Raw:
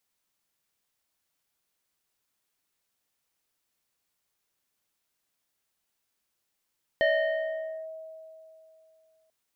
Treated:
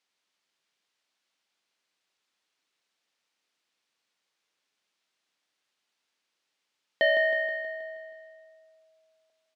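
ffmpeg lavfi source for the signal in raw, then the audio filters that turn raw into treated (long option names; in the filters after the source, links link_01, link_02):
-f lavfi -i "aevalsrc='0.112*pow(10,-3*t/2.91)*sin(2*PI*640*t+1.2*clip(1-t/0.86,0,1)*sin(2*PI*1.9*640*t))':duration=2.29:sample_rate=44100"
-filter_complex "[0:a]highpass=210,lowpass=3800,highshelf=frequency=2500:gain=10,asplit=2[link_01][link_02];[link_02]aecho=0:1:159|318|477|636|795|954|1113:0.355|0.209|0.124|0.0729|0.043|0.0254|0.015[link_03];[link_01][link_03]amix=inputs=2:normalize=0"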